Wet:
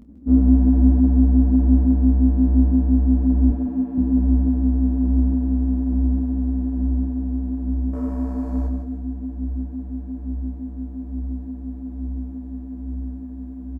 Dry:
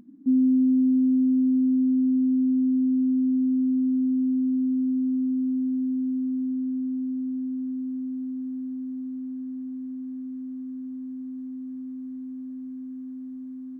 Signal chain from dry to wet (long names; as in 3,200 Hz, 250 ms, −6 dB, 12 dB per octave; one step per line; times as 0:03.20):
sub-octave generator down 2 octaves, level −1 dB
0:03.50–0:03.98: high-pass filter 270 Hz
0:07.93–0:08.67: leveller curve on the samples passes 2
double-tracking delay 28 ms −9.5 dB
repeating echo 156 ms, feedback 39%, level −7.5 dB
micro pitch shift up and down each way 40 cents
level +6 dB